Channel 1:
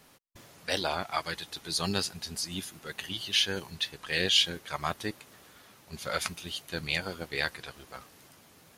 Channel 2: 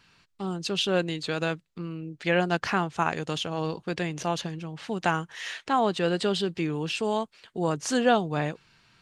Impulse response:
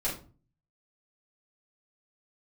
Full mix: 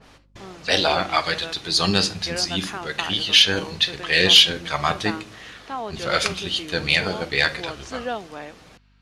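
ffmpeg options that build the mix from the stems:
-filter_complex "[0:a]adynamicequalizer=threshold=0.00891:dfrequency=2000:dqfactor=0.7:tfrequency=2000:tqfactor=0.7:attack=5:release=100:ratio=0.375:range=2:mode=boostabove:tftype=highshelf,volume=1.19,asplit=2[s0][s1];[s1]volume=0.211[s2];[1:a]equalizer=f=140:w=1.5:g=-15,volume=0.224[s3];[2:a]atrim=start_sample=2205[s4];[s2][s4]afir=irnorm=-1:irlink=0[s5];[s0][s3][s5]amix=inputs=3:normalize=0,lowpass=5500,acontrast=84,aeval=exprs='val(0)+0.00141*(sin(2*PI*50*n/s)+sin(2*PI*2*50*n/s)/2+sin(2*PI*3*50*n/s)/3+sin(2*PI*4*50*n/s)/4+sin(2*PI*5*50*n/s)/5)':c=same"

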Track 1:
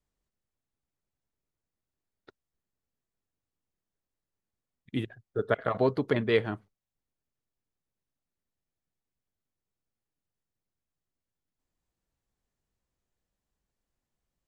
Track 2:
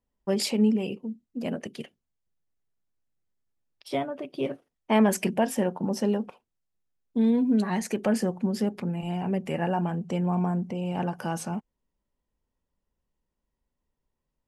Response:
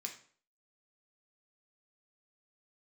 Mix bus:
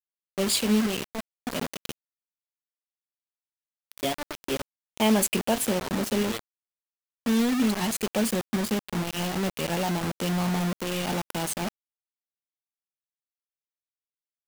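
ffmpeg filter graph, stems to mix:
-filter_complex "[0:a]highpass=81,aemphasis=mode=reproduction:type=50fm,bandreject=f=60:t=h:w=6,bandreject=f=120:t=h:w=6,bandreject=f=180:t=h:w=6,bandreject=f=240:t=h:w=6,bandreject=f=300:t=h:w=6,volume=0.237[s0];[1:a]equalizer=f=5400:w=3.4:g=-13.5,adelay=100,volume=0.891[s1];[s0][s1]amix=inputs=2:normalize=0,highshelf=f=2500:t=q:w=1.5:g=9,acrusher=bits=4:mix=0:aa=0.000001"

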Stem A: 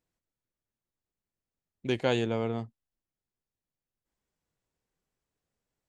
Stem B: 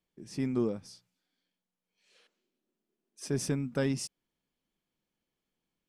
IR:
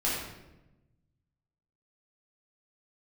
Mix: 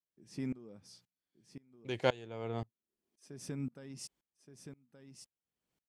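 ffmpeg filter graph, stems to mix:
-filter_complex "[0:a]equalizer=f=230:t=o:w=0.77:g=-5.5,volume=1.06[s0];[1:a]acompressor=threshold=0.0316:ratio=6,volume=1.12,asplit=2[s1][s2];[s2]volume=0.211,aecho=0:1:1173:1[s3];[s0][s1][s3]amix=inputs=3:normalize=0,highpass=41,aeval=exprs='val(0)*pow(10,-24*if(lt(mod(-1.9*n/s,1),2*abs(-1.9)/1000),1-mod(-1.9*n/s,1)/(2*abs(-1.9)/1000),(mod(-1.9*n/s,1)-2*abs(-1.9)/1000)/(1-2*abs(-1.9)/1000))/20)':c=same"

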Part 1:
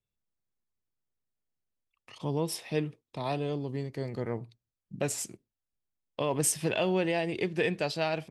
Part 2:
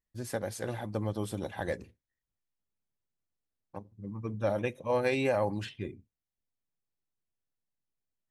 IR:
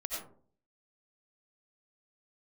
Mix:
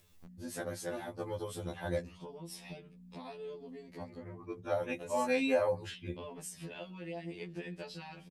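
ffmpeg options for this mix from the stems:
-filter_complex "[0:a]acompressor=threshold=0.0282:ratio=6,volume=0.355[s0];[1:a]aeval=exprs='val(0)+0.00251*(sin(2*PI*60*n/s)+sin(2*PI*2*60*n/s)/2+sin(2*PI*3*60*n/s)/3+sin(2*PI*4*60*n/s)/4+sin(2*PI*5*60*n/s)/5)':c=same,adelay=250,volume=1[s1];[s0][s1]amix=inputs=2:normalize=0,acompressor=mode=upward:threshold=0.0158:ratio=2.5,afftfilt=real='re*2*eq(mod(b,4),0)':imag='im*2*eq(mod(b,4),0)':win_size=2048:overlap=0.75"

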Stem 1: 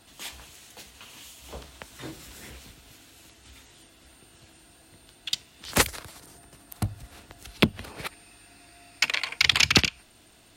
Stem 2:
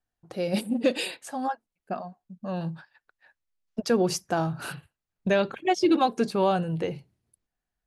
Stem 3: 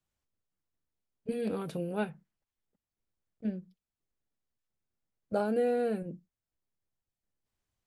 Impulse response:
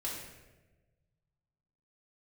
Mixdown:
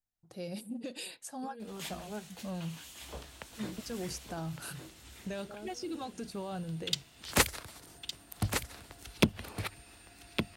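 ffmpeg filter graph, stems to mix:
-filter_complex "[0:a]adelay=1600,volume=0.631,asplit=2[s0][s1];[s1]volume=0.398[s2];[1:a]bass=f=250:g=6,treble=f=4000:g=10,volume=0.2,asplit=2[s3][s4];[2:a]aecho=1:1:4.9:0.65,adelay=150,volume=0.188[s5];[s4]apad=whole_len=353644[s6];[s5][s6]sidechaincompress=threshold=0.00794:ratio=8:attack=16:release=940[s7];[s3][s7]amix=inputs=2:normalize=0,dynaudnorm=f=200:g=9:m=1.88,alimiter=level_in=2.37:limit=0.0631:level=0:latency=1:release=280,volume=0.422,volume=1[s8];[s2]aecho=0:1:1161:1[s9];[s0][s8][s9]amix=inputs=3:normalize=0,aeval=exprs='0.282*(abs(mod(val(0)/0.282+3,4)-2)-1)':c=same"

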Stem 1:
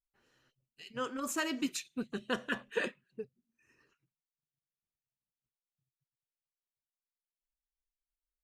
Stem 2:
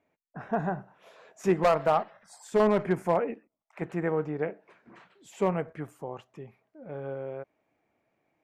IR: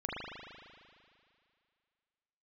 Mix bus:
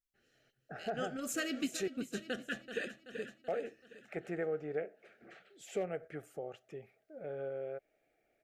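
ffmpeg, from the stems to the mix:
-filter_complex "[0:a]volume=0.891,asplit=2[s0][s1];[s1]volume=0.266[s2];[1:a]lowshelf=f=330:t=q:w=1.5:g=-6,acompressor=threshold=0.00794:ratio=1.5,aeval=exprs='0.0794*(abs(mod(val(0)/0.0794+3,4)-2)-1)':c=same,adelay=350,volume=0.891,asplit=3[s3][s4][s5];[s3]atrim=end=1.88,asetpts=PTS-STARTPTS,afade=t=out:st=1.876:d=0.004:c=hsin[s6];[s4]atrim=start=1.88:end=3.48,asetpts=PTS-STARTPTS,volume=0[s7];[s5]atrim=start=3.48,asetpts=PTS-STARTPTS,afade=t=in:d=0.004:c=hsin[s8];[s6][s7][s8]concat=n=3:v=0:a=1[s9];[s2]aecho=0:1:381|762|1143|1524|1905|2286|2667:1|0.51|0.26|0.133|0.0677|0.0345|0.0176[s10];[s0][s9][s10]amix=inputs=3:normalize=0,asuperstop=centerf=1000:order=4:qfactor=1.9,alimiter=level_in=1.19:limit=0.0631:level=0:latency=1:release=317,volume=0.841"

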